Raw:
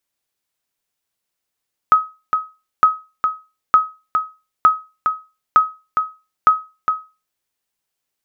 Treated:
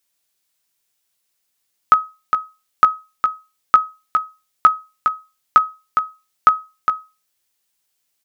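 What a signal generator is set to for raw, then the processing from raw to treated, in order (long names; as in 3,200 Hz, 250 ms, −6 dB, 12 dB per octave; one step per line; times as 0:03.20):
ping with an echo 1,270 Hz, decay 0.29 s, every 0.91 s, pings 6, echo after 0.41 s, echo −6.5 dB −3 dBFS
high-shelf EQ 2,300 Hz +8.5 dB
double-tracking delay 17 ms −9.5 dB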